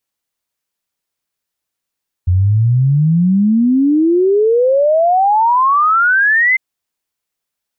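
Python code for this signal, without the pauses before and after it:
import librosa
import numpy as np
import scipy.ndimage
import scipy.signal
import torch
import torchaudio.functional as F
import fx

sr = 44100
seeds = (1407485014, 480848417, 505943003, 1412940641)

y = fx.ess(sr, length_s=4.3, from_hz=87.0, to_hz=2100.0, level_db=-8.5)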